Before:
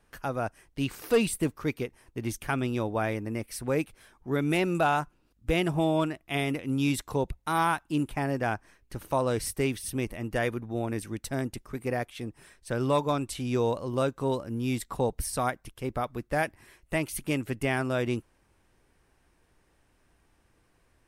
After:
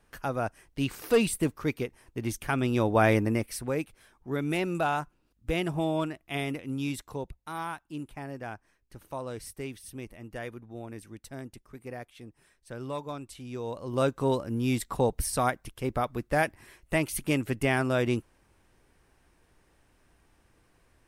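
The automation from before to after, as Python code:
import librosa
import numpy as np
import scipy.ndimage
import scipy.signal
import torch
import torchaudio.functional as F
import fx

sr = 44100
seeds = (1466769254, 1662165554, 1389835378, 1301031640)

y = fx.gain(x, sr, db=fx.line((2.52, 0.5), (3.18, 9.0), (3.75, -3.0), (6.46, -3.0), (7.56, -10.0), (13.62, -10.0), (14.05, 2.0)))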